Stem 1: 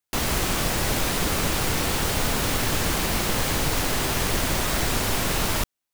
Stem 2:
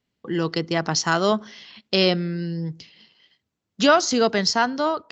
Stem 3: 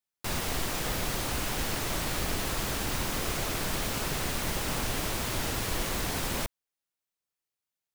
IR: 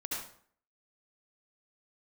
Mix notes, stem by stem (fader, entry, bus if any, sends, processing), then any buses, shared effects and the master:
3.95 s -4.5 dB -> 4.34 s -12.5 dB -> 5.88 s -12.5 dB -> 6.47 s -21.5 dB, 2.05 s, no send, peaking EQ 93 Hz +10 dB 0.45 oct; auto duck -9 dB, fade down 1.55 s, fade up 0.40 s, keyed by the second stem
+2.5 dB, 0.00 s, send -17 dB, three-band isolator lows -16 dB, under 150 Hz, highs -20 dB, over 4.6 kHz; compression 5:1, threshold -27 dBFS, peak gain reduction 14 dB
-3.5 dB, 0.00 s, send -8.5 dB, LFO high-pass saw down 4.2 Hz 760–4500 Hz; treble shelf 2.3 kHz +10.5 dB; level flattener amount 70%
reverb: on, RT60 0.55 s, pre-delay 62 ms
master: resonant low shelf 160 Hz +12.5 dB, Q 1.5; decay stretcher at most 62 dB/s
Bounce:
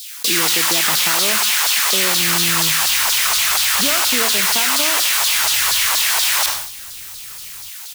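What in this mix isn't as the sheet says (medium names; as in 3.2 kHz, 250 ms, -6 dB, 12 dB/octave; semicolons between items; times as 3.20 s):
stem 1 -4.5 dB -> -13.0 dB; stem 3 -3.5 dB -> +5.5 dB; master: missing resonant low shelf 160 Hz +12.5 dB, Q 1.5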